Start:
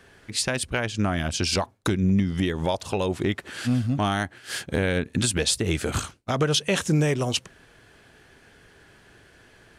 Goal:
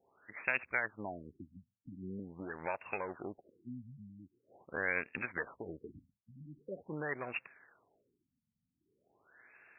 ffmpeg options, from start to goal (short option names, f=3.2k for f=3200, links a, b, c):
-af "aeval=exprs='if(lt(val(0),0),0.447*val(0),val(0))':c=same,aderivative,afftfilt=real='re*lt(b*sr/1024,240*pow(2800/240,0.5+0.5*sin(2*PI*0.44*pts/sr)))':imag='im*lt(b*sr/1024,240*pow(2800/240,0.5+0.5*sin(2*PI*0.44*pts/sr)))':win_size=1024:overlap=0.75,volume=10.5dB"